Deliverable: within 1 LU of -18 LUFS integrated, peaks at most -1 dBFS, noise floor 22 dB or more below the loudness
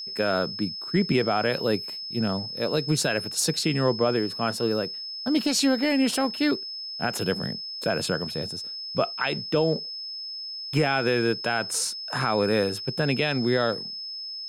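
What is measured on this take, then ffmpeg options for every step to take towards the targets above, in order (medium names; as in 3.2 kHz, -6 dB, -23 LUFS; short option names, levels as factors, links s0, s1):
steady tone 5.2 kHz; tone level -33 dBFS; loudness -25.5 LUFS; peak level -12.0 dBFS; loudness target -18.0 LUFS
-> -af "bandreject=f=5200:w=30"
-af "volume=2.37"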